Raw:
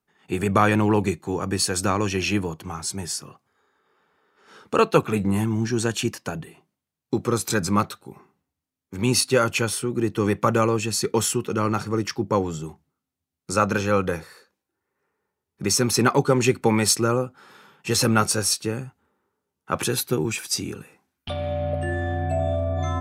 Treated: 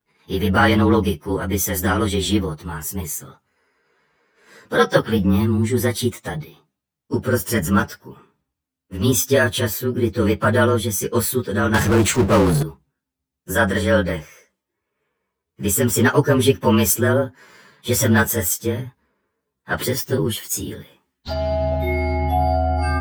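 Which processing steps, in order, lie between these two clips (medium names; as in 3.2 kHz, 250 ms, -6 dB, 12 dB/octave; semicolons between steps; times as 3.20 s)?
frequency axis rescaled in octaves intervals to 111%; 11.74–12.63 s: power-law waveshaper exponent 0.5; trim +6 dB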